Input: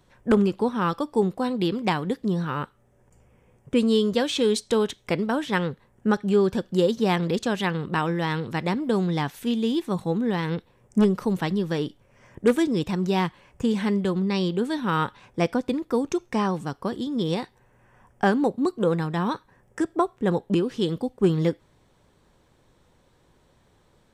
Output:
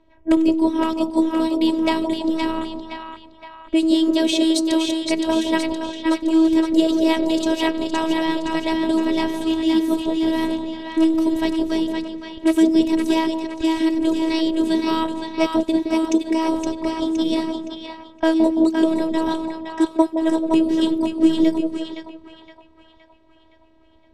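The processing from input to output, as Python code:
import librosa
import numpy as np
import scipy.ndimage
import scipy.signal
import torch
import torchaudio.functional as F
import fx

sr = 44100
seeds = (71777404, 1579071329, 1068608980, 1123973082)

y = fx.peak_eq(x, sr, hz=1400.0, db=-14.0, octaves=0.48)
y = fx.echo_split(y, sr, split_hz=790.0, low_ms=168, high_ms=517, feedback_pct=52, wet_db=-4.0)
y = fx.robotise(y, sr, hz=322.0)
y = fx.env_lowpass(y, sr, base_hz=2200.0, full_db=-23.0)
y = y * librosa.db_to_amplitude(7.0)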